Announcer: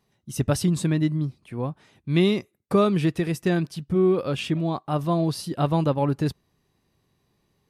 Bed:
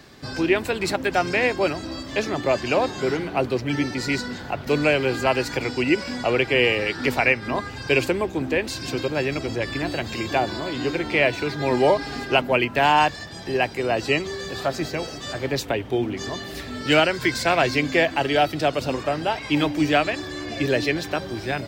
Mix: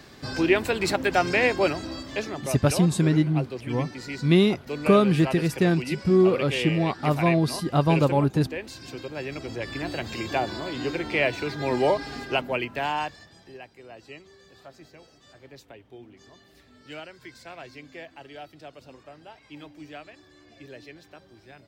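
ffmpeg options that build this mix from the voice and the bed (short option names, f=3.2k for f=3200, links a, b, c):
-filter_complex "[0:a]adelay=2150,volume=1.5dB[a];[1:a]volume=6.5dB,afade=t=out:st=1.64:d=0.88:silence=0.298538,afade=t=in:st=9.08:d=0.95:silence=0.446684,afade=t=out:st=11.92:d=1.7:silence=0.11885[b];[a][b]amix=inputs=2:normalize=0"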